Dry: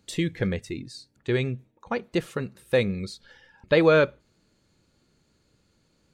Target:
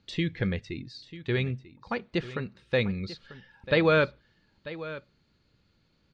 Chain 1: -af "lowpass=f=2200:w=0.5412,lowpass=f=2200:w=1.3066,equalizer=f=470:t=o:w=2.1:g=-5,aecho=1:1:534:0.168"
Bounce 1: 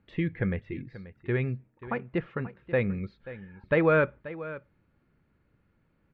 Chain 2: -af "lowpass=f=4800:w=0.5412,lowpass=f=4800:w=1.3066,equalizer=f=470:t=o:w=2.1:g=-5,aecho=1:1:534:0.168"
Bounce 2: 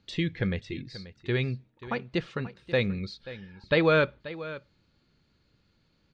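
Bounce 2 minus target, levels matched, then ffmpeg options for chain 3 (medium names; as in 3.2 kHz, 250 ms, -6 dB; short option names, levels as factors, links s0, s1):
echo 408 ms early
-af "lowpass=f=4800:w=0.5412,lowpass=f=4800:w=1.3066,equalizer=f=470:t=o:w=2.1:g=-5,aecho=1:1:942:0.168"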